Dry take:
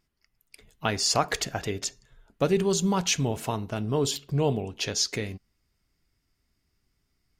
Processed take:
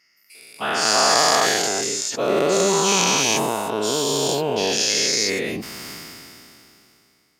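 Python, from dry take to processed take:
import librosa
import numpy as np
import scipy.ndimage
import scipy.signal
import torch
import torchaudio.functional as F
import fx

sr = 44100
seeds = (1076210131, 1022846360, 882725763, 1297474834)

y = fx.spec_dilate(x, sr, span_ms=480)
y = scipy.signal.sosfilt(scipy.signal.butter(2, 250.0, 'highpass', fs=sr, output='sos'), y)
y = fx.sustainer(y, sr, db_per_s=21.0)
y = F.gain(torch.from_numpy(y), -1.5).numpy()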